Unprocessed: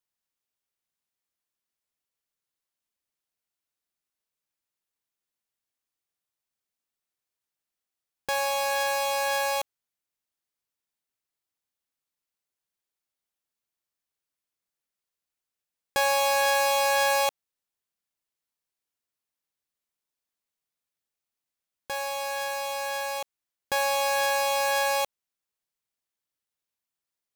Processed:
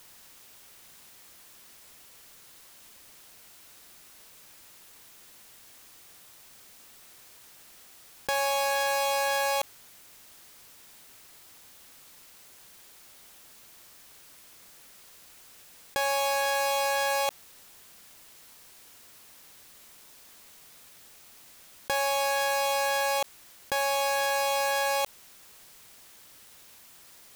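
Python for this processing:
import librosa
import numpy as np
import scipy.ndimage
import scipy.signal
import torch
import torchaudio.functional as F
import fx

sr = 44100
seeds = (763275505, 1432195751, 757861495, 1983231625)

y = fx.env_flatten(x, sr, amount_pct=100)
y = y * librosa.db_to_amplitude(-4.5)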